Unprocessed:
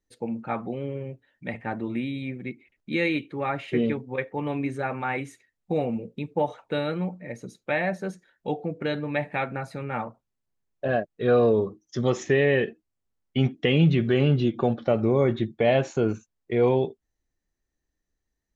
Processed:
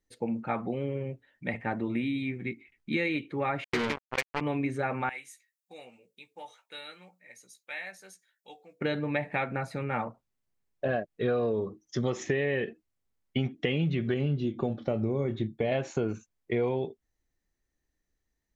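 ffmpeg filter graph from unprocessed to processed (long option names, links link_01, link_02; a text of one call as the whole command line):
ffmpeg -i in.wav -filter_complex "[0:a]asettb=1/sr,asplit=3[link_01][link_02][link_03];[link_01]atrim=end=2.024[link_04];[link_02]atrim=start=2.02:end=2.97,asetpts=PTS-STARTPTS,afade=type=in:duration=0.004:curve=qsin,afade=type=out:start_time=0.946:duration=0.004:curve=qsin,equalizer=frequency=560:width_type=o:width=0.35:gain=-13,asplit=2[link_05][link_06];[link_06]adelay=18,volume=-8dB[link_07];[link_05][link_07]amix=inputs=2:normalize=0,atrim=end_sample=41895[link_08];[link_03]atrim=start=2.966[link_09];[link_04][link_08]acrossfade=duration=0.004:curve1=hsin:curve2=qsin[link_10];[link_10][link_09]acrossfade=duration=0.004:curve1=qsin:curve2=hsin,asettb=1/sr,asplit=3[link_11][link_12][link_13];[link_11]atrim=end=3.644[link_14];[link_12]atrim=start=3.64:end=4.41,asetpts=PTS-STARTPTS,afade=type=in:duration=0.004:curve=qsin,afade=type=out:start_time=0.766:duration=0.004:curve=qsin,asuperstop=centerf=1400:order=12:qfactor=2.5,acrusher=bits=3:mix=0:aa=0.5,tiltshelf=frequency=660:gain=-5[link_15];[link_13]atrim=start=4.406[link_16];[link_14][link_15]acrossfade=duration=0.004:curve1=hsin:curve2=qsin[link_17];[link_17][link_16]acrossfade=duration=0.004:curve1=qsin:curve2=hsin,asettb=1/sr,asplit=3[link_18][link_19][link_20];[link_18]atrim=end=5.094[link_21];[link_19]atrim=start=5.09:end=8.81,asetpts=PTS-STARTPTS,afade=type=in:duration=0.004:curve=qsin,afade=type=out:start_time=3.716:duration=0.004:curve=qsin,aderivative,asplit=2[link_22][link_23];[link_23]adelay=16,volume=-6.5dB[link_24];[link_22][link_24]amix=inputs=2:normalize=0,atrim=end_sample=164052[link_25];[link_20]atrim=start=8.806[link_26];[link_21][link_25]acrossfade=duration=0.004:curve1=hsin:curve2=qsin[link_27];[link_27][link_26]acrossfade=duration=0.004:curve1=qsin:curve2=hsin,asettb=1/sr,asplit=3[link_28][link_29][link_30];[link_28]atrim=end=14.144[link_31];[link_29]atrim=start=14.14:end=15.72,asetpts=PTS-STARTPTS,afade=type=in:duration=0.004:curve=qsin,afade=type=out:start_time=1.576:duration=0.004:curve=qsin,equalizer=frequency=1500:width=0.39:gain=-7.5,asplit=2[link_32][link_33];[link_33]adelay=28,volume=-11dB[link_34];[link_32][link_34]amix=inputs=2:normalize=0,atrim=end_sample=69678[link_35];[link_30]atrim=start=15.716[link_36];[link_31][link_35]acrossfade=duration=0.004:curve1=hsin:curve2=qsin[link_37];[link_37][link_36]acrossfade=duration=0.004:curve1=qsin:curve2=hsin,equalizer=frequency=2100:width=3.9:gain=3,acompressor=threshold=-25dB:ratio=6" out.wav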